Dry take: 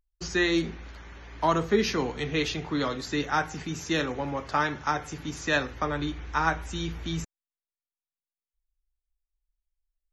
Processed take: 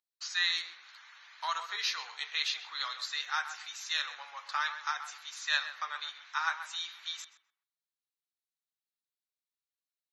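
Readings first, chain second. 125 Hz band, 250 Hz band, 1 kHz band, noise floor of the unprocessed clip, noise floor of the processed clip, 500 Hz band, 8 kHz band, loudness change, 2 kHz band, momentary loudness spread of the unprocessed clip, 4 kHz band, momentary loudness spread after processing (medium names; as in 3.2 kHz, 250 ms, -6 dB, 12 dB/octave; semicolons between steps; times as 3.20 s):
under -40 dB, under -40 dB, -8.0 dB, under -85 dBFS, under -85 dBFS, -28.5 dB, -3.5 dB, -5.5 dB, -3.5 dB, 11 LU, +2.0 dB, 12 LU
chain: high-pass 1.1 kHz 24 dB/octave; peaking EQ 4 kHz +9.5 dB 0.34 oct; tape echo 130 ms, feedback 27%, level -9 dB, low-pass 1.9 kHz; trim -4 dB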